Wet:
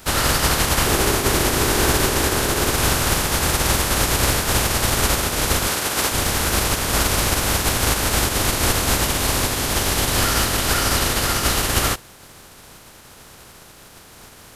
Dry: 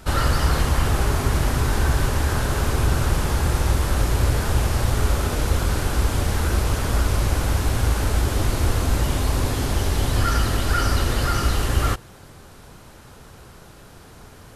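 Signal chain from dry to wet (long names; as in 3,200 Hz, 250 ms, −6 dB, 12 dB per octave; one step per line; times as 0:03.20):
compressing power law on the bin magnitudes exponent 0.53
0:00.86–0:02.72: parametric band 370 Hz +7 dB 0.8 octaves
0:05.67–0:06.12: high-pass filter 260 Hz 6 dB per octave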